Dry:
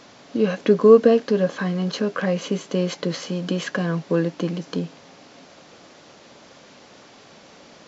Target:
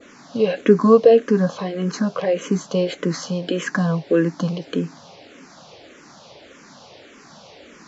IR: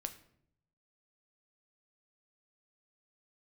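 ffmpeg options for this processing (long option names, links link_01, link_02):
-filter_complex "[0:a]adynamicequalizer=threshold=0.00631:dfrequency=3000:dqfactor=1.1:tfrequency=3000:tqfactor=1.1:attack=5:release=100:ratio=0.375:range=2:mode=cutabove:tftype=bell,asplit=2[link_01][link_02];[link_02]afreqshift=-1.7[link_03];[link_01][link_03]amix=inputs=2:normalize=1,volume=5.5dB"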